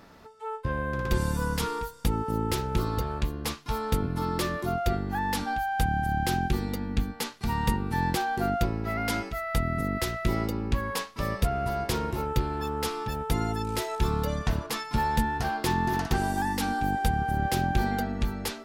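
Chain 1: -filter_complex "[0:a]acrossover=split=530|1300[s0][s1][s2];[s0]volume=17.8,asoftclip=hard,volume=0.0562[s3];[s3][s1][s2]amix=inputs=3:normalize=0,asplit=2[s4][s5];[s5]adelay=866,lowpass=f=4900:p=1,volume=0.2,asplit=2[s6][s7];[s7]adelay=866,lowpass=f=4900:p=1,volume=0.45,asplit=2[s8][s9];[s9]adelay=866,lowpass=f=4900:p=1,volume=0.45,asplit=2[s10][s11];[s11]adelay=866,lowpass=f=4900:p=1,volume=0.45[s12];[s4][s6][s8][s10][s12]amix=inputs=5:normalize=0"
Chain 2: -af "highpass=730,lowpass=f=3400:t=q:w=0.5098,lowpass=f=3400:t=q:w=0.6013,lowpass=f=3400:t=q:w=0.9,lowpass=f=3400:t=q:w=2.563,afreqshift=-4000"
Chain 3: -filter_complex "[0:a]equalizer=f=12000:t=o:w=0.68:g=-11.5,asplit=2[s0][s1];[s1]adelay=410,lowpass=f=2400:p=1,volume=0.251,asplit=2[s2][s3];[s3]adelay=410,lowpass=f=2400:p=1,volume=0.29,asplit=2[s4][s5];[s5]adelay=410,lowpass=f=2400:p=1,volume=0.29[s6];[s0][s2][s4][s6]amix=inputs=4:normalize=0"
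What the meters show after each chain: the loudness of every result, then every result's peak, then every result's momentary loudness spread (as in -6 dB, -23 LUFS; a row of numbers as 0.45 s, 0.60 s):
-29.5 LUFS, -31.5 LUFS, -29.0 LUFS; -14.0 dBFS, -19.5 dBFS, -11.0 dBFS; 4 LU, 8 LU, 4 LU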